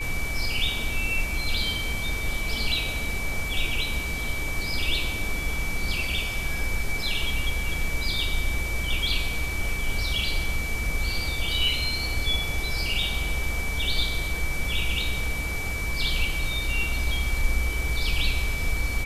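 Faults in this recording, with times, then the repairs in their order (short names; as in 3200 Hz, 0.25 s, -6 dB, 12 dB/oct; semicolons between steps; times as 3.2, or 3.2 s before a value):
tone 2300 Hz -31 dBFS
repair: notch 2300 Hz, Q 30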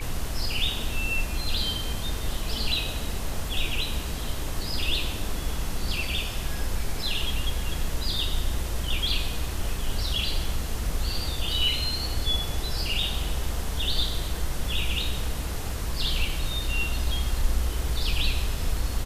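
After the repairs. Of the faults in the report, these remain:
none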